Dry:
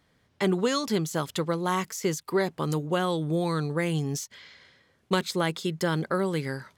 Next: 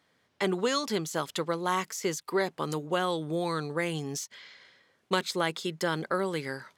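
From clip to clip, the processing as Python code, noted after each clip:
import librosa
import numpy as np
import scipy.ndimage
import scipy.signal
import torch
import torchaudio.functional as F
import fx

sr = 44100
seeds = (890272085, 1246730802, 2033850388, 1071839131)

y = fx.highpass(x, sr, hz=370.0, slope=6)
y = fx.high_shelf(y, sr, hz=12000.0, db=-6.0)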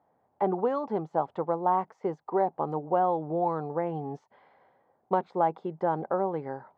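y = fx.lowpass_res(x, sr, hz=800.0, q=4.9)
y = y * 10.0 ** (-2.0 / 20.0)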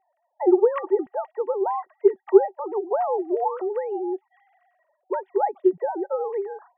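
y = fx.sine_speech(x, sr)
y = fx.small_body(y, sr, hz=(380.0, 1900.0), ring_ms=65, db=15)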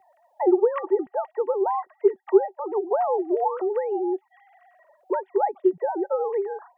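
y = fx.band_squash(x, sr, depth_pct=40)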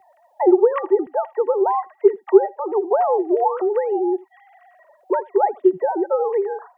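y = x + 10.0 ** (-22.5 / 20.0) * np.pad(x, (int(80 * sr / 1000.0), 0))[:len(x)]
y = y * 10.0 ** (5.0 / 20.0)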